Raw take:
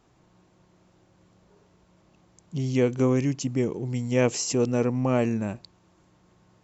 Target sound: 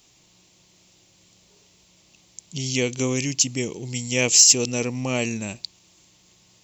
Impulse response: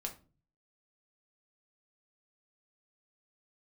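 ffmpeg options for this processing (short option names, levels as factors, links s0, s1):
-af "aexciter=amount=6:drive=6.7:freq=2200,volume=0.75"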